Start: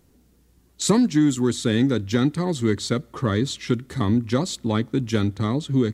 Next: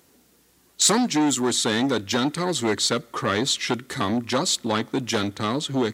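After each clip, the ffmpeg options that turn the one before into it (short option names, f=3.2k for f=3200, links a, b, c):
-af "aeval=exprs='0.473*(cos(1*acos(clip(val(0)/0.473,-1,1)))-cos(1*PI/2))+0.106*(cos(5*acos(clip(val(0)/0.473,-1,1)))-cos(5*PI/2))':c=same,highpass=f=710:p=1,volume=2dB"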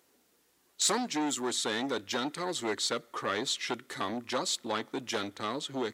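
-af "bass=f=250:g=-11,treble=f=4k:g=-2,volume=-7.5dB"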